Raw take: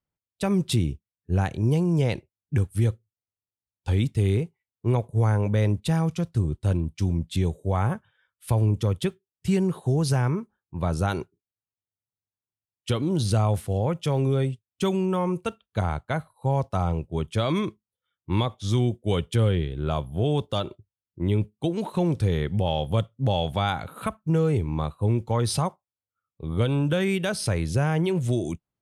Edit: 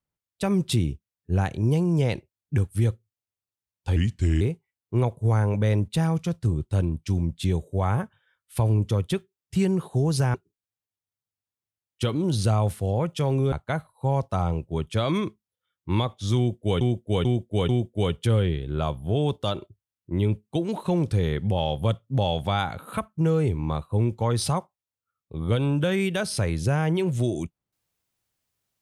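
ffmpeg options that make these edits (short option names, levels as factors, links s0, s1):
-filter_complex "[0:a]asplit=8[s0][s1][s2][s3][s4][s5][s6][s7];[s0]atrim=end=3.964[s8];[s1]atrim=start=3.96:end=4.33,asetpts=PTS-STARTPTS,asetrate=36162,aresample=44100[s9];[s2]atrim=start=4.326:end=10.262[s10];[s3]atrim=start=11.208:end=14.392[s11];[s4]atrim=start=15.928:end=19.222[s12];[s5]atrim=start=18.778:end=19.222[s13];[s6]atrim=start=18.778:end=19.222[s14];[s7]atrim=start=18.778[s15];[s8][s9]acrossfade=d=0.004:c1=hsin:c2=hsin[s16];[s16][s10]acrossfade=d=0.004:c1=hsin:c2=hsin[s17];[s17][s11]acrossfade=d=0.004:c1=hsin:c2=hsin[s18];[s18][s12]acrossfade=d=0.004:c1=hsin:c2=hsin[s19];[s19][s13]acrossfade=d=0.004:c1=hsin:c2=hsin[s20];[s20][s14]acrossfade=d=0.004:c1=hsin:c2=hsin[s21];[s21][s15]acrossfade=d=0.004:c1=hsin:c2=hsin"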